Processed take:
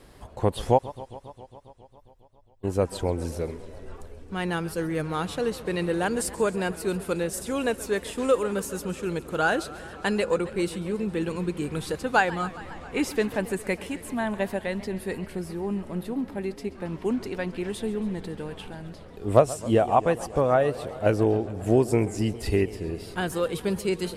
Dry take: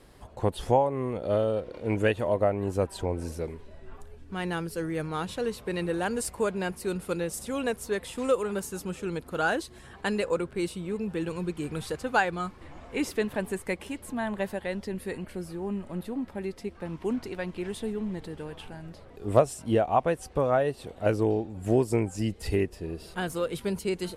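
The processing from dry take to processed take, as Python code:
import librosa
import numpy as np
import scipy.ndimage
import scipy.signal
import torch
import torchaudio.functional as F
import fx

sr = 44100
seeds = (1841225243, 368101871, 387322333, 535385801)

y = fx.cheby2_bandstop(x, sr, low_hz=130.0, high_hz=8400.0, order=4, stop_db=60, at=(0.77, 2.63), fade=0.02)
y = fx.echo_warbled(y, sr, ms=136, feedback_pct=78, rate_hz=2.8, cents=168, wet_db=-18.0)
y = y * librosa.db_to_amplitude(3.0)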